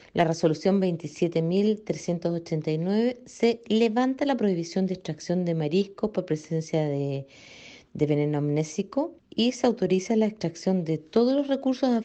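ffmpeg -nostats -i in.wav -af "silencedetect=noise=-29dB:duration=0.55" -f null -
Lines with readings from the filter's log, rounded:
silence_start: 7.20
silence_end: 7.96 | silence_duration: 0.76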